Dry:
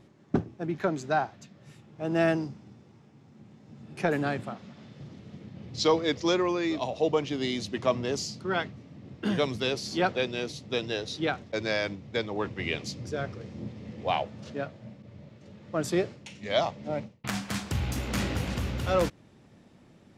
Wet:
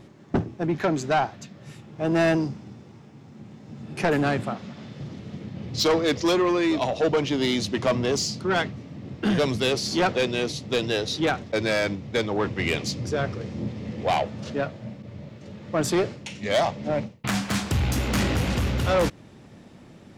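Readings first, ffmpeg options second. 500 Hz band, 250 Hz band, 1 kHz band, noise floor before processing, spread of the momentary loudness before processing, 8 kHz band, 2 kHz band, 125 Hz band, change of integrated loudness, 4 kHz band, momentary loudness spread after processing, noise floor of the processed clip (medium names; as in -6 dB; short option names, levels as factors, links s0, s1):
+4.5 dB, +5.5 dB, +4.5 dB, -57 dBFS, 19 LU, +7.0 dB, +5.0 dB, +6.5 dB, +5.0 dB, +5.5 dB, 17 LU, -48 dBFS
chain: -af "asoftclip=type=tanh:threshold=0.0562,volume=2.66"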